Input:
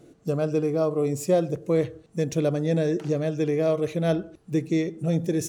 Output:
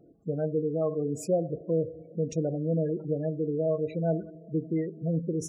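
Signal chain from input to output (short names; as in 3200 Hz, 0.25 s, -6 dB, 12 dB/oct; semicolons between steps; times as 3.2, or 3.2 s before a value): two-slope reverb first 0.2 s, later 3.6 s, from -19 dB, DRR 10.5 dB; spectral gate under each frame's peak -20 dB strong; gain -5.5 dB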